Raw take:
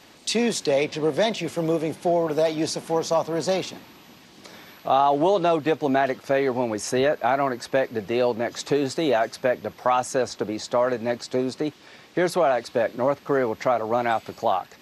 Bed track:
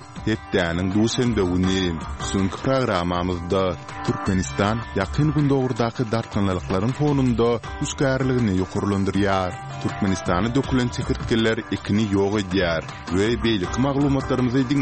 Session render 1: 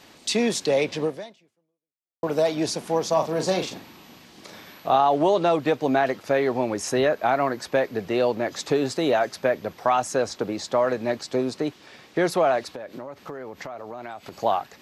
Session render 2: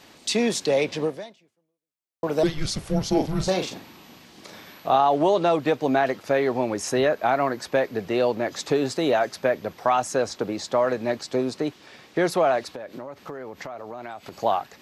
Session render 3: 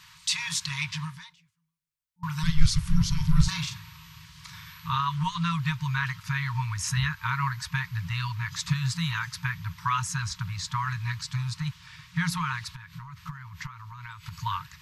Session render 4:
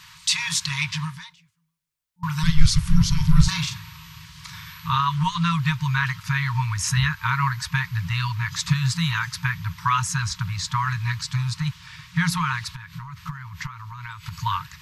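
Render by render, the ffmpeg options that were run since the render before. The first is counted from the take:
ffmpeg -i in.wav -filter_complex "[0:a]asettb=1/sr,asplit=3[link_01][link_02][link_03];[link_01]atrim=end=3.134[link_04];[link_02]atrim=start=3.13:end=4.96,asetpts=PTS-STARTPTS,afade=type=in:duration=0.004:curve=qsin,afade=type=out:start_time=1.826:duration=0.004:curve=qsin,asplit=2[link_05][link_06];[link_06]adelay=38,volume=-7dB[link_07];[link_05][link_07]amix=inputs=2:normalize=0,atrim=end_sample=80703[link_08];[link_03]atrim=start=4.956[link_09];[link_04][link_08]acrossfade=duration=0.004:curve1=hsin:curve2=qsin[link_10];[link_10][link_09]acrossfade=duration=0.004:curve1=qsin:curve2=hsin,asettb=1/sr,asplit=3[link_11][link_12][link_13];[link_11]atrim=end=12.714[link_14];[link_12]atrim=start=12.71:end=14.38,asetpts=PTS-STARTPTS,afade=type=in:duration=0.004:curve=qsin,afade=type=out:start_time=1.666:duration=0.004:curve=qsin,acompressor=threshold=-32dB:ratio=10:attack=3.2:release=140:knee=1:detection=peak[link_15];[link_13]atrim=start=14.376[link_16];[link_14][link_15]acrossfade=duration=0.004:curve1=hsin:curve2=qsin[link_17];[link_17][link_16]acrossfade=duration=0.004:curve1=qsin:curve2=hsin,asplit=2[link_18][link_19];[link_18]atrim=end=2.23,asetpts=PTS-STARTPTS,afade=type=out:start_time=1.03:duration=1.2:curve=exp[link_20];[link_19]atrim=start=2.23,asetpts=PTS-STARTPTS,afade=type=in:duration=0.004:curve=hsin[link_21];[link_20][link_21]concat=n=2:v=0:a=1" out.wav
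ffmpeg -i in.wav -filter_complex "[0:a]asettb=1/sr,asplit=3[link_01][link_02][link_03];[link_01]atrim=end=2.434[link_04];[link_02]atrim=start=2.43:end=3.48,asetpts=PTS-STARTPTS,afade=type=in:duration=0.004:curve=qsin,afade=type=out:start_time=1.046:duration=0.004:curve=qsin,afreqshift=-310[link_05];[link_03]atrim=start=3.476[link_06];[link_04][link_05]acrossfade=duration=0.004:curve1=hsin:curve2=qsin[link_07];[link_07][link_06]acrossfade=duration=0.004:curve1=qsin:curve2=hsin" out.wav
ffmpeg -i in.wav -af "afftfilt=real='re*(1-between(b*sr/4096,180,900))':imag='im*(1-between(b*sr/4096,180,900))':win_size=4096:overlap=0.75,asubboost=boost=5.5:cutoff=160" out.wav
ffmpeg -i in.wav -af "volume=5.5dB,alimiter=limit=-2dB:level=0:latency=1" out.wav

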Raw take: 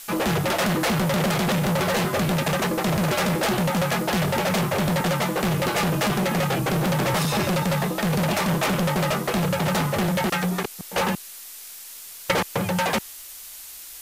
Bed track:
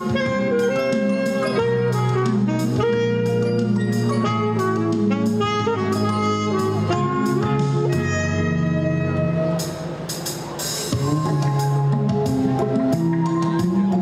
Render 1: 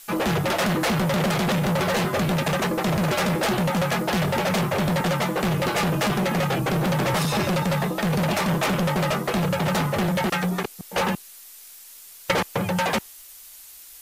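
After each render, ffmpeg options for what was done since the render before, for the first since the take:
ffmpeg -i in.wav -af "afftdn=noise_reduction=6:noise_floor=-40" out.wav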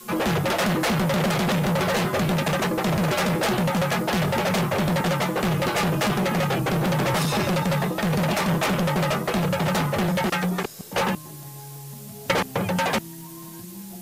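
ffmpeg -i in.wav -i bed.wav -filter_complex "[1:a]volume=-21dB[link_01];[0:a][link_01]amix=inputs=2:normalize=0" out.wav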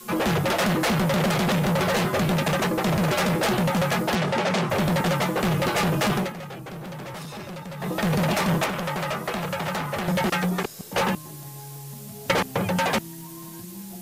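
ffmpeg -i in.wav -filter_complex "[0:a]asettb=1/sr,asplit=3[link_01][link_02][link_03];[link_01]atrim=end=4.154[link_04];[link_02]atrim=start=4.15:end=4.7,asetpts=PTS-STARTPTS,afade=type=in:duration=0.004:curve=qsin,afade=type=out:start_time=0.546:duration=0.004:curve=qsin,highpass=150,lowpass=7100[link_05];[link_03]atrim=start=4.696[link_06];[link_04][link_05]acrossfade=duration=0.004:curve1=hsin:curve2=qsin[link_07];[link_07][link_06]acrossfade=duration=0.004:curve1=qsin:curve2=hsin,asettb=1/sr,asplit=3[link_08][link_09][link_10];[link_08]atrim=end=8.644[link_11];[link_09]atrim=start=8.64:end=10.08,asetpts=PTS-STARTPTS,afade=type=in:duration=0.004:curve=qsin,afade=type=out:start_time=1.436:duration=0.004:curve=qsin,acrossover=split=640|2800[link_12][link_13][link_14];[link_12]acompressor=threshold=-32dB:ratio=4[link_15];[link_13]acompressor=threshold=-27dB:ratio=4[link_16];[link_14]acompressor=threshold=-38dB:ratio=4[link_17];[link_15][link_16][link_17]amix=inputs=3:normalize=0[link_18];[link_10]atrim=start=10.076[link_19];[link_11][link_18]acrossfade=duration=0.004:curve1=hsin:curve2=qsin[link_20];[link_20][link_19]acrossfade=duration=0.004:curve1=qsin:curve2=hsin,asplit=3[link_21][link_22][link_23];[link_21]atrim=end=6.33,asetpts=PTS-STARTPTS,afade=type=out:start_time=6.17:duration=0.16:silence=0.211349[link_24];[link_22]atrim=start=6.33:end=7.78,asetpts=PTS-STARTPTS,volume=-13.5dB[link_25];[link_23]atrim=start=7.78,asetpts=PTS-STARTPTS,afade=type=in:duration=0.16:silence=0.211349[link_26];[link_24][link_25][link_26]concat=n=3:v=0:a=1" out.wav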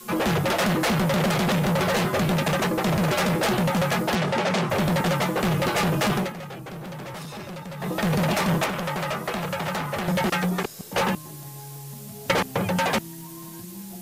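ffmpeg -i in.wav -af anull out.wav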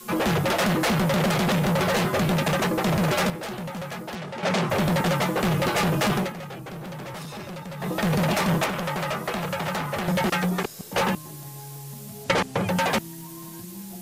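ffmpeg -i in.wav -filter_complex "[0:a]asettb=1/sr,asplit=3[link_01][link_02][link_03];[link_01]atrim=end=12.244[link_04];[link_02]atrim=start=12.24:end=12.68,asetpts=PTS-STARTPTS,afade=type=in:duration=0.004:curve=qsin,afade=type=out:start_time=0.436:duration=0.004:curve=qsin,lowpass=9500[link_05];[link_03]atrim=start=12.676[link_06];[link_04][link_05]acrossfade=duration=0.004:curve1=hsin:curve2=qsin[link_07];[link_07][link_06]acrossfade=duration=0.004:curve1=qsin:curve2=hsin,asplit=3[link_08][link_09][link_10];[link_08]atrim=end=3.302[link_11];[link_09]atrim=start=3.298:end=4.432,asetpts=PTS-STARTPTS,volume=-10.5dB[link_12];[link_10]atrim=start=4.428[link_13];[link_11][link_12]acrossfade=duration=0.004:curve1=hsin:curve2=hsin[link_14];[link_14][link_13]acrossfade=duration=0.004:curve1=hsin:curve2=hsin" out.wav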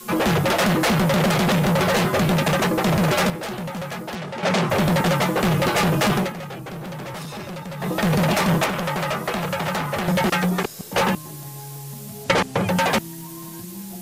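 ffmpeg -i in.wav -af "volume=3.5dB" out.wav

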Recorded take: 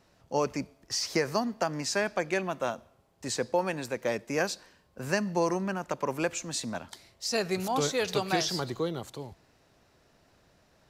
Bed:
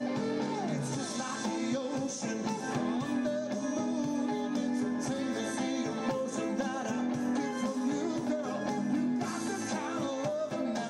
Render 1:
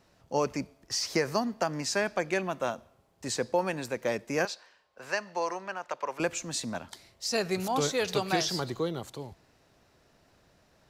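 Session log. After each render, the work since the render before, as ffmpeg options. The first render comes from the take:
ffmpeg -i in.wav -filter_complex "[0:a]asettb=1/sr,asplit=3[link_01][link_02][link_03];[link_01]atrim=end=4.454[link_04];[link_02]atrim=start=4.45:end=6.2,asetpts=PTS-STARTPTS,afade=type=in:duration=0.004:curve=qsin,afade=type=out:start_time=1.746:duration=0.004:curve=qsin,acrossover=split=490 6100:gain=0.1 1 0.224[link_05][link_06][link_07];[link_05][link_06][link_07]amix=inputs=3:normalize=0[link_08];[link_03]atrim=start=6.196[link_09];[link_04][link_08]acrossfade=duration=0.004:curve1=hsin:curve2=qsin[link_10];[link_10][link_09]acrossfade=duration=0.004:curve1=qsin:curve2=hsin" out.wav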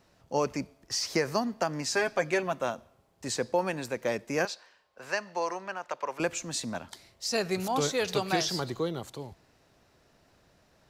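ffmpeg -i in.wav -filter_complex "[0:a]asettb=1/sr,asplit=3[link_01][link_02][link_03];[link_01]atrim=end=1.934[link_04];[link_02]atrim=start=1.93:end=2.53,asetpts=PTS-STARTPTS,afade=type=in:duration=0.004:curve=qsin,afade=type=out:start_time=0.596:duration=0.004:curve=qsin,aecho=1:1:7.4:0.65,atrim=end_sample=26460[link_05];[link_03]atrim=start=2.526[link_06];[link_04][link_05]acrossfade=duration=0.004:curve1=hsin:curve2=qsin[link_07];[link_07][link_06]acrossfade=duration=0.004:curve1=qsin:curve2=hsin" out.wav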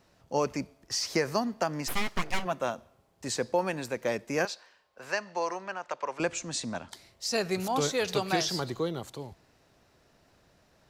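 ffmpeg -i in.wav -filter_complex "[0:a]asplit=3[link_01][link_02][link_03];[link_01]afade=type=out:start_time=1.87:duration=0.02[link_04];[link_02]aeval=exprs='abs(val(0))':channel_layout=same,afade=type=in:start_time=1.87:duration=0.02,afade=type=out:start_time=2.44:duration=0.02[link_05];[link_03]afade=type=in:start_time=2.44:duration=0.02[link_06];[link_04][link_05][link_06]amix=inputs=3:normalize=0,asettb=1/sr,asplit=3[link_07][link_08][link_09];[link_07]atrim=end=5.124[link_10];[link_08]atrim=start=5.12:end=6.92,asetpts=PTS-STARTPTS,afade=type=in:duration=0.004:curve=qsin,afade=type=out:start_time=1.796:duration=0.004:curve=qsin,lowpass=frequency=9200:width=0.5412,lowpass=frequency=9200:width=1.3066[link_11];[link_09]atrim=start=6.916[link_12];[link_10][link_11]acrossfade=duration=0.004:curve1=hsin:curve2=qsin[link_13];[link_13][link_12]acrossfade=duration=0.004:curve1=qsin:curve2=hsin" out.wav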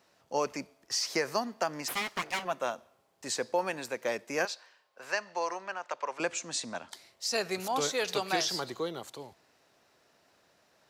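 ffmpeg -i in.wav -af "highpass=frequency=140:poles=1,lowshelf=frequency=260:gain=-10.5" out.wav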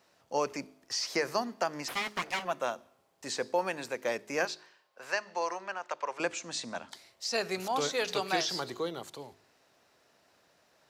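ffmpeg -i in.wav -filter_complex "[0:a]bandreject=frequency=52.1:width_type=h:width=4,bandreject=frequency=104.2:width_type=h:width=4,bandreject=frequency=156.3:width_type=h:width=4,bandreject=frequency=208.4:width_type=h:width=4,bandreject=frequency=260.5:width_type=h:width=4,bandreject=frequency=312.6:width_type=h:width=4,bandreject=frequency=364.7:width_type=h:width=4,bandreject=frequency=416.8:width_type=h:width=4,acrossover=split=6400[link_01][link_02];[link_02]acompressor=threshold=-47dB:ratio=4:attack=1:release=60[link_03];[link_01][link_03]amix=inputs=2:normalize=0" out.wav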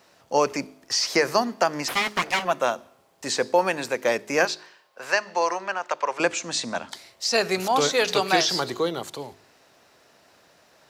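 ffmpeg -i in.wav -af "volume=9.5dB" out.wav

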